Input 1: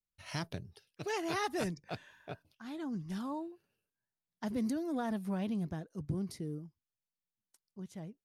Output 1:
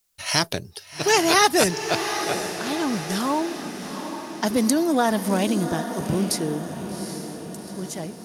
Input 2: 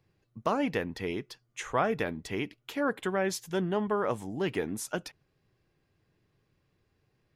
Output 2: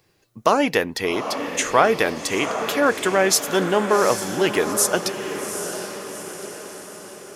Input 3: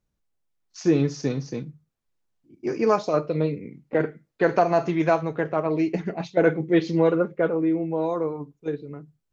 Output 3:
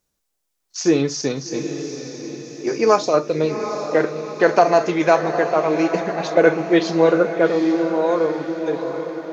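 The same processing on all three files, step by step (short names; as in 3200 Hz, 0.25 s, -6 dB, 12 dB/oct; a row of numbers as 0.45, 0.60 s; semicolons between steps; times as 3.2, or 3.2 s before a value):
tone controls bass -10 dB, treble +8 dB; on a send: diffused feedback echo 0.785 s, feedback 54%, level -8.5 dB; on the sum: normalise peaks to -2 dBFS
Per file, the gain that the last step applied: +17.5, +12.0, +6.0 dB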